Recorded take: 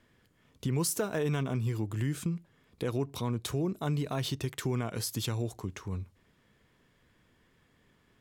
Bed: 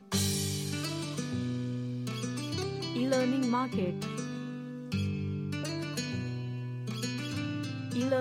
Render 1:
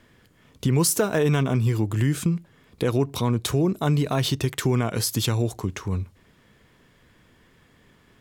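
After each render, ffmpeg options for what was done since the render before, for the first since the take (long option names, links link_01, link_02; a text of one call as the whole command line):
ffmpeg -i in.wav -af "volume=9.5dB" out.wav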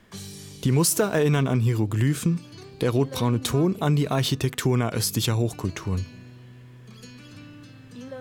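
ffmpeg -i in.wav -i bed.wav -filter_complex "[1:a]volume=-9.5dB[link_01];[0:a][link_01]amix=inputs=2:normalize=0" out.wav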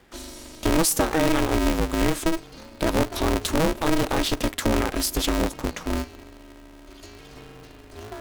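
ffmpeg -i in.wav -af "aeval=exprs='val(0)*sgn(sin(2*PI*160*n/s))':channel_layout=same" out.wav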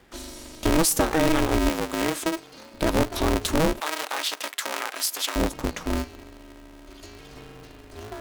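ffmpeg -i in.wav -filter_complex "[0:a]asettb=1/sr,asplit=3[link_01][link_02][link_03];[link_01]atrim=end=1.694[link_04];[link_02]atrim=start=1.69:end=2.74,asetpts=PTS-STARTPTS,afade=type=in:duration=0.004:curve=qsin,afade=type=out:start_time=1.046:duration=0.004:curve=qsin,highpass=frequency=320:poles=1[link_05];[link_03]atrim=start=2.736[link_06];[link_04][link_05]acrossfade=duration=0.004:curve1=hsin:curve2=qsin[link_07];[link_07][link_06]acrossfade=duration=0.004:curve1=qsin:curve2=hsin,asettb=1/sr,asplit=3[link_08][link_09][link_10];[link_08]atrim=end=3.804[link_11];[link_09]atrim=start=3.8:end=5.36,asetpts=PTS-STARTPTS,afade=type=in:duration=0.004:curve=qsin,afade=type=out:start_time=1.556:duration=0.004:curve=qsin,highpass=910[link_12];[link_10]atrim=start=5.356[link_13];[link_11][link_12]acrossfade=duration=0.004:curve1=hsin:curve2=qsin[link_14];[link_14][link_13]acrossfade=duration=0.004:curve1=qsin:curve2=hsin" out.wav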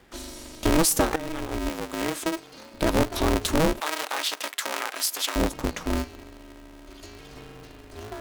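ffmpeg -i in.wav -filter_complex "[0:a]asplit=2[link_01][link_02];[link_01]atrim=end=1.16,asetpts=PTS-STARTPTS,afade=type=out:start_time=1.156:duration=0.004:curve=hsin:silence=0.16788[link_03];[link_02]atrim=start=1.16,asetpts=PTS-STARTPTS,afade=type=in:duration=1.36:silence=0.16788[link_04];[link_03][link_04]concat=n=2:v=0:a=1" out.wav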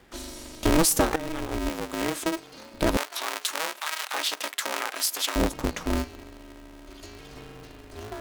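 ffmpeg -i in.wav -filter_complex "[0:a]asettb=1/sr,asplit=3[link_01][link_02][link_03];[link_01]atrim=end=2.974[link_04];[link_02]atrim=start=2.97:end=4.14,asetpts=PTS-STARTPTS,afade=type=in:duration=0.004:curve=qsin,afade=type=out:start_time=1.166:duration=0.004:curve=qsin,highpass=1100[link_05];[link_03]atrim=start=4.136[link_06];[link_04][link_05]acrossfade=duration=0.004:curve1=hsin:curve2=qsin[link_07];[link_07][link_06]acrossfade=duration=0.004:curve1=qsin:curve2=hsin" out.wav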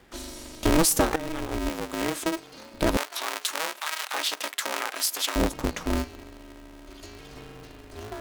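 ffmpeg -i in.wav -af anull out.wav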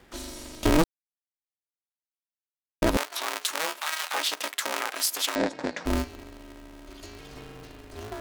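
ffmpeg -i in.wav -filter_complex "[0:a]asettb=1/sr,asplit=3[link_01][link_02][link_03];[link_01]atrim=end=3.604[link_04];[link_02]atrim=start=3.6:end=4.2,asetpts=PTS-STARTPTS,afade=type=in:duration=0.004:curve=qsin,afade=type=out:start_time=0.596:duration=0.004:curve=qsin,asplit=2[link_05][link_06];[link_06]adelay=12,volume=-7dB[link_07];[link_05][link_07]amix=inputs=2:normalize=0,atrim=end_sample=26460[link_08];[link_03]atrim=start=4.196[link_09];[link_04][link_08]acrossfade=duration=0.004:curve1=hsin:curve2=qsin[link_10];[link_10][link_09]acrossfade=duration=0.004:curve1=qsin:curve2=hsin,asettb=1/sr,asplit=3[link_11][link_12][link_13];[link_11]atrim=end=5.354[link_14];[link_12]atrim=start=5.35:end=5.85,asetpts=PTS-STARTPTS,afade=type=in:duration=0.004:curve=qsin,afade=type=out:start_time=0.496:duration=0.004:curve=qsin,highpass=230,equalizer=frequency=390:width_type=q:width=4:gain=-3,equalizer=frequency=570:width_type=q:width=4:gain=3,equalizer=frequency=1200:width_type=q:width=4:gain=-7,equalizer=frequency=1700:width_type=q:width=4:gain=5,equalizer=frequency=3000:width_type=q:width=4:gain=-6,equalizer=frequency=6200:width_type=q:width=4:gain=-6,lowpass=frequency=6600:width=0.5412,lowpass=frequency=6600:width=1.3066[link_15];[link_13]atrim=start=5.846[link_16];[link_14][link_15]acrossfade=duration=0.004:curve1=hsin:curve2=qsin[link_17];[link_17][link_16]acrossfade=duration=0.004:curve1=qsin:curve2=hsin,asplit=3[link_18][link_19][link_20];[link_18]atrim=end=0.84,asetpts=PTS-STARTPTS,afade=type=out:start_time=0.836:duration=0.004:curve=hsin[link_21];[link_19]atrim=start=0.84:end=2.82,asetpts=PTS-STARTPTS,volume=0[link_22];[link_20]atrim=start=2.82,asetpts=PTS-STARTPTS,afade=type=in:duration=0.004:curve=hsin[link_23];[link_21][link_22][link_23]concat=n=3:v=0:a=1" out.wav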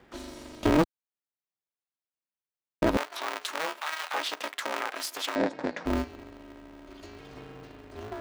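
ffmpeg -i in.wav -af "highpass=frequency=86:poles=1,equalizer=frequency=14000:width_type=o:width=2.1:gain=-13" out.wav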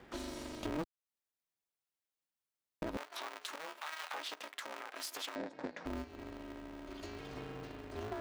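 ffmpeg -i in.wav -af "acompressor=threshold=-39dB:ratio=2.5,alimiter=level_in=3.5dB:limit=-24dB:level=0:latency=1:release=334,volume=-3.5dB" out.wav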